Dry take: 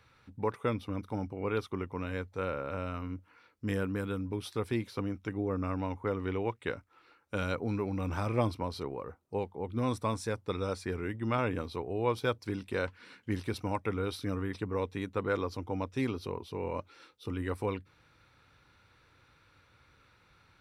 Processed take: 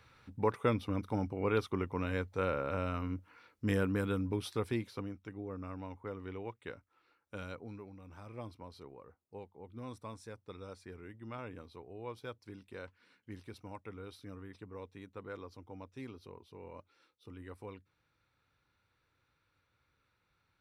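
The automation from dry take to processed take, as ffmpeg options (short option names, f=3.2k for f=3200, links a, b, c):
-af "volume=7dB,afade=t=out:st=4.29:d=0.92:silence=0.281838,afade=t=out:st=7.34:d=0.68:silence=0.316228,afade=t=in:st=8.02:d=0.71:silence=0.501187"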